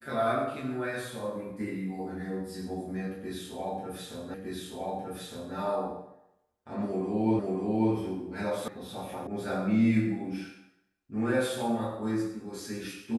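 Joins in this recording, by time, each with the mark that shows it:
0:04.34: the same again, the last 1.21 s
0:07.39: the same again, the last 0.54 s
0:08.68: cut off before it has died away
0:09.27: cut off before it has died away

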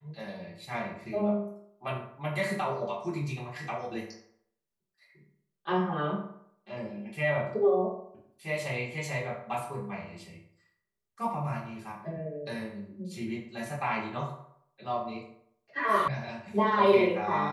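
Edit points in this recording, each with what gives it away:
0:16.08: cut off before it has died away

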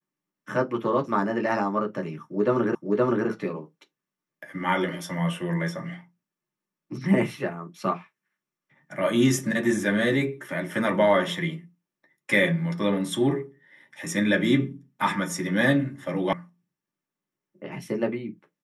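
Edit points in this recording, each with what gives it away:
0:02.75: the same again, the last 0.52 s
0:16.33: cut off before it has died away

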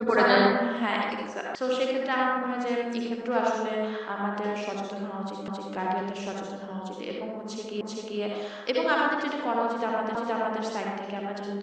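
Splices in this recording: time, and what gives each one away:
0:01.55: cut off before it has died away
0:05.48: the same again, the last 0.27 s
0:07.81: the same again, the last 0.39 s
0:10.15: the same again, the last 0.47 s

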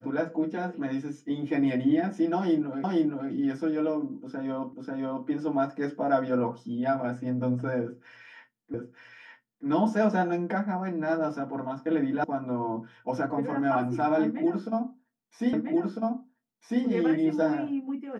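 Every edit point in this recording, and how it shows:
0:02.84: the same again, the last 0.47 s
0:04.73: the same again, the last 0.54 s
0:08.74: the same again, the last 0.92 s
0:12.24: cut off before it has died away
0:15.53: the same again, the last 1.3 s

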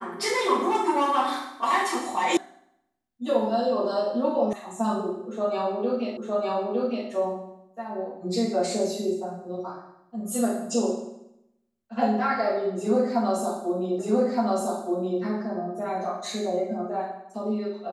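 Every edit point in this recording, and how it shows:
0:02.37: cut off before it has died away
0:04.53: cut off before it has died away
0:06.17: the same again, the last 0.91 s
0:13.99: the same again, the last 1.22 s

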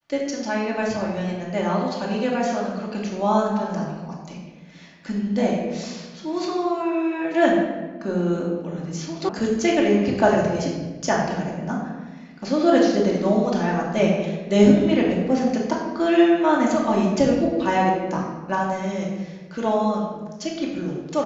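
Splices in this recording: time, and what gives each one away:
0:09.29: cut off before it has died away

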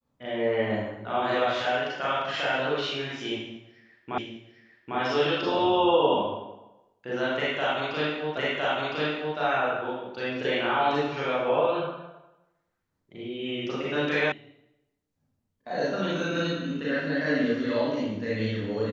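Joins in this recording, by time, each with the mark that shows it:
0:04.18: the same again, the last 0.8 s
0:08.37: the same again, the last 1.01 s
0:14.32: cut off before it has died away

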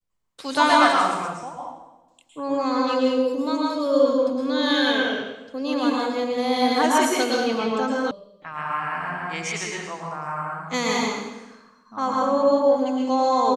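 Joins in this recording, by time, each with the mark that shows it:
0:08.11: cut off before it has died away

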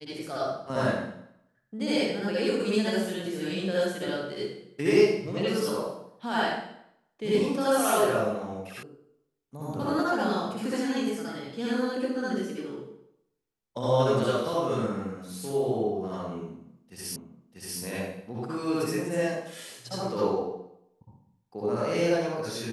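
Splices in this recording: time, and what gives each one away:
0:08.83: cut off before it has died away
0:17.16: the same again, the last 0.64 s

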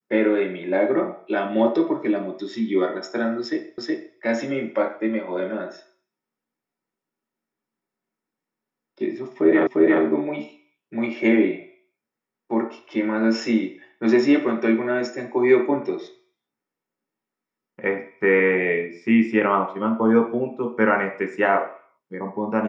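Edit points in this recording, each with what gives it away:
0:03.78: the same again, the last 0.37 s
0:09.67: the same again, the last 0.35 s

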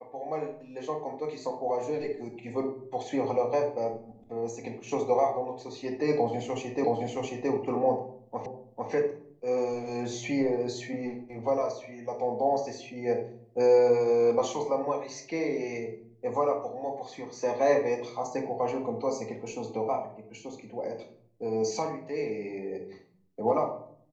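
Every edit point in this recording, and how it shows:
0:06.84: the same again, the last 0.67 s
0:08.46: the same again, the last 0.45 s

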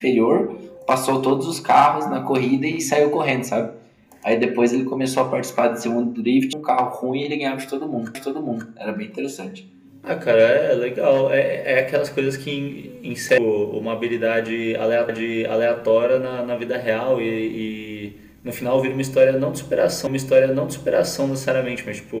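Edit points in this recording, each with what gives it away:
0:06.53: cut off before it has died away
0:08.15: the same again, the last 0.54 s
0:13.38: cut off before it has died away
0:15.09: the same again, the last 0.7 s
0:20.07: the same again, the last 1.15 s

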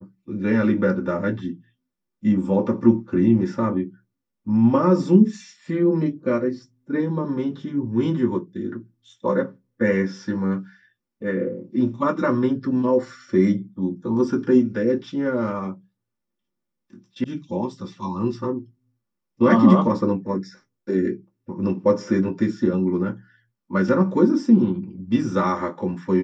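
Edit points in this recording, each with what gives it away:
0:17.24: cut off before it has died away

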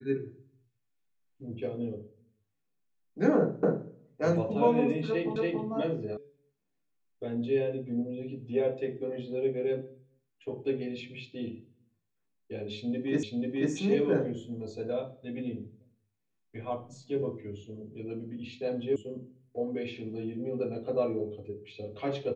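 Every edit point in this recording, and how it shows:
0:03.63: the same again, the last 0.26 s
0:05.36: the same again, the last 0.28 s
0:06.17: cut off before it has died away
0:13.23: the same again, the last 0.49 s
0:18.96: cut off before it has died away

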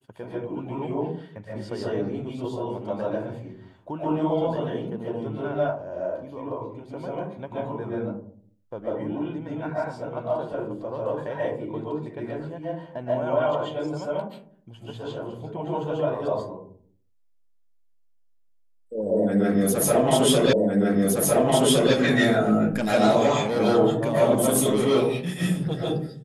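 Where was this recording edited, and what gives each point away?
0:20.53: the same again, the last 1.41 s

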